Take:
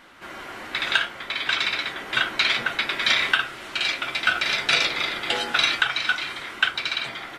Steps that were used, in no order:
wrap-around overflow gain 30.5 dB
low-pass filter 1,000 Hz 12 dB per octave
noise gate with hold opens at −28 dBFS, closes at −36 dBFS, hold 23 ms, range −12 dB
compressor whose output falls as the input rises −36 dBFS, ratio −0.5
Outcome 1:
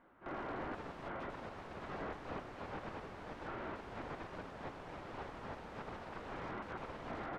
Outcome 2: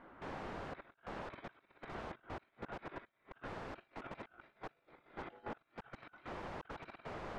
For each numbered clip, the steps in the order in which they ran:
noise gate with hold, then wrap-around overflow, then compressor whose output falls as the input rises, then low-pass filter
compressor whose output falls as the input rises, then noise gate with hold, then wrap-around overflow, then low-pass filter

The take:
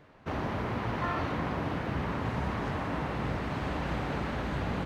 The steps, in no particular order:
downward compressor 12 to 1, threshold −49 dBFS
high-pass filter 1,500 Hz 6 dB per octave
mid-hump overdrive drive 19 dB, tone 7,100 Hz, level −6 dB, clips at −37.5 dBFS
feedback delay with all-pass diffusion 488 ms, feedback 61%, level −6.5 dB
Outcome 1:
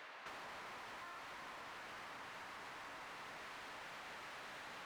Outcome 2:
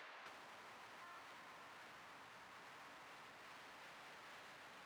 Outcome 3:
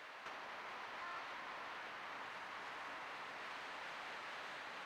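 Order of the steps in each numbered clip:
high-pass filter, then mid-hump overdrive, then feedback delay with all-pass diffusion, then downward compressor
feedback delay with all-pass diffusion, then mid-hump overdrive, then downward compressor, then high-pass filter
downward compressor, then high-pass filter, then mid-hump overdrive, then feedback delay with all-pass diffusion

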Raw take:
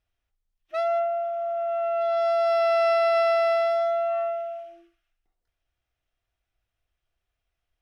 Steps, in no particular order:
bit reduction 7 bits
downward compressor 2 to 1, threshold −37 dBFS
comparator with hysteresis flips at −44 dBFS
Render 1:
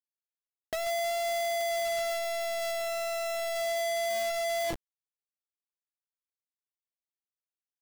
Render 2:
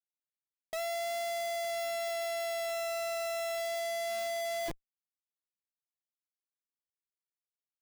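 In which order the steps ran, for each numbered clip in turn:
comparator with hysteresis, then downward compressor, then bit reduction
downward compressor, then bit reduction, then comparator with hysteresis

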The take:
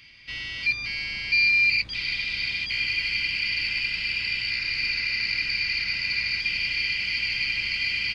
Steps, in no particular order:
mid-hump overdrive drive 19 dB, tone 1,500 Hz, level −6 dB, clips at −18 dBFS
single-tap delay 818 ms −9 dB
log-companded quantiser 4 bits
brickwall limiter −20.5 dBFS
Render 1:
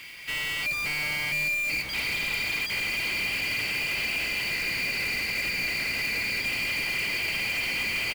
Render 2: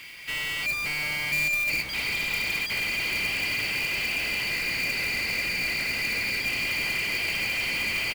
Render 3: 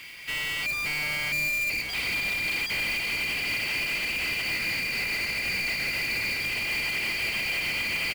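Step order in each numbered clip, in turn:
brickwall limiter, then mid-hump overdrive, then single-tap delay, then log-companded quantiser
mid-hump overdrive, then brickwall limiter, then single-tap delay, then log-companded quantiser
single-tap delay, then mid-hump overdrive, then log-companded quantiser, then brickwall limiter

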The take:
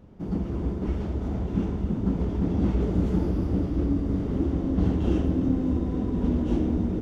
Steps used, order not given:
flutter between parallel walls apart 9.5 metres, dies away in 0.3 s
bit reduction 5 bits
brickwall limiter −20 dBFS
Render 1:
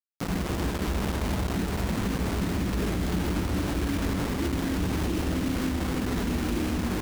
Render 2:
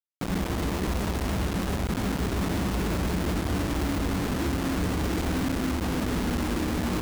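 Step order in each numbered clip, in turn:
bit reduction, then flutter between parallel walls, then brickwall limiter
flutter between parallel walls, then brickwall limiter, then bit reduction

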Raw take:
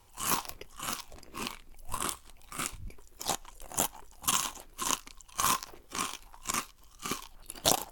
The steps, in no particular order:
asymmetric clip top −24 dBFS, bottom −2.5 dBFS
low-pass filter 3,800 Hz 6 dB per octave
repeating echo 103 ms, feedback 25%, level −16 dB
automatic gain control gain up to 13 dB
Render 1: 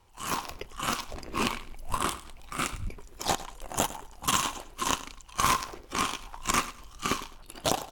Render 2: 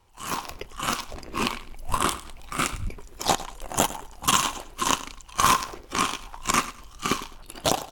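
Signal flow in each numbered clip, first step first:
automatic gain control, then low-pass filter, then asymmetric clip, then repeating echo
low-pass filter, then asymmetric clip, then automatic gain control, then repeating echo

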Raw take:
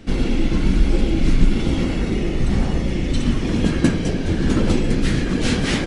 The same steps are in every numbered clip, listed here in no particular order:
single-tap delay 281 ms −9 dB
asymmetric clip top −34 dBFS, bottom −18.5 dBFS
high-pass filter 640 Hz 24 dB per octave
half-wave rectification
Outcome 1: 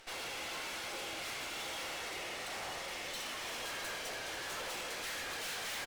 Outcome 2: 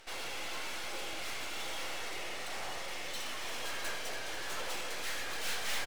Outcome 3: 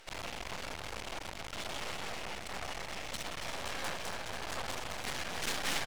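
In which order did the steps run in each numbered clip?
high-pass filter, then half-wave rectification, then asymmetric clip, then single-tap delay
high-pass filter, then asymmetric clip, then half-wave rectification, then single-tap delay
asymmetric clip, then high-pass filter, then half-wave rectification, then single-tap delay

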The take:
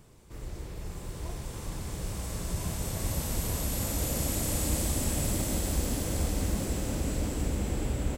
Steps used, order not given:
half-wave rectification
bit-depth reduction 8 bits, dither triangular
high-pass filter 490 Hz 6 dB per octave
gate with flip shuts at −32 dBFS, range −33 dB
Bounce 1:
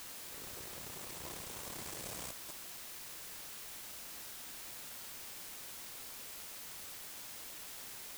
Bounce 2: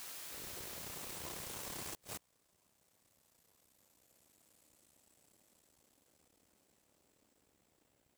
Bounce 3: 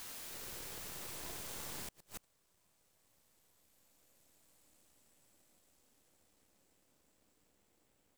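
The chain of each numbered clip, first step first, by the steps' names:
half-wave rectification, then high-pass filter, then gate with flip, then bit-depth reduction
half-wave rectification, then bit-depth reduction, then high-pass filter, then gate with flip
high-pass filter, then half-wave rectification, then bit-depth reduction, then gate with flip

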